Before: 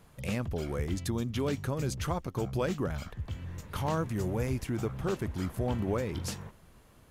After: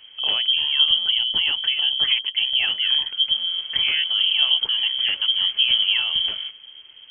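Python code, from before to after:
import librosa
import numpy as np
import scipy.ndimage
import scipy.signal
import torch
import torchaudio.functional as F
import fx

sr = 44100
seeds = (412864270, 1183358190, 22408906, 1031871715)

y = fx.peak_eq(x, sr, hz=62.0, db=11.5, octaves=1.9)
y = fx.freq_invert(y, sr, carrier_hz=3200)
y = F.gain(torch.from_numpy(y), 5.5).numpy()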